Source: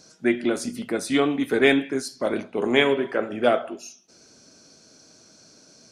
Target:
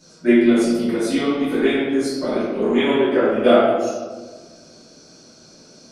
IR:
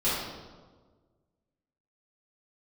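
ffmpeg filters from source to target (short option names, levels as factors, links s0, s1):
-filter_complex "[0:a]asettb=1/sr,asplit=3[s0][s1][s2];[s0]atrim=end=0.514[s3];[s1]atrim=start=0.51:end=2.87,asetpts=PTS-STARTPTS,afade=t=in:d=0.004:c=qsin,afade=t=out:st=2.356:d=0.004:c=qsin,acompressor=threshold=0.0562:ratio=2.5[s4];[s2]atrim=start=2.866[s5];[s3][s4]acrossfade=d=0.004:c1=hsin:c2=qsin[s6];[s6][s5]acrossfade=d=0.004:c1=qsin:c2=hsin[s7];[1:a]atrim=start_sample=2205[s8];[s7][s8]afir=irnorm=-1:irlink=0,volume=0.531"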